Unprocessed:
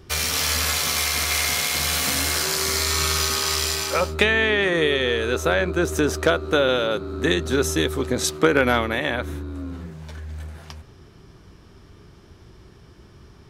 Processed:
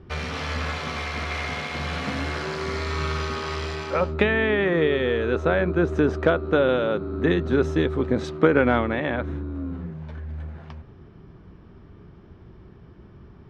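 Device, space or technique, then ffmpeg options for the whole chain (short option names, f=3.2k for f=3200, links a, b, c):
phone in a pocket: -af "lowpass=3.4k,equalizer=f=190:t=o:w=0.93:g=4,highshelf=f=2.5k:g=-11.5"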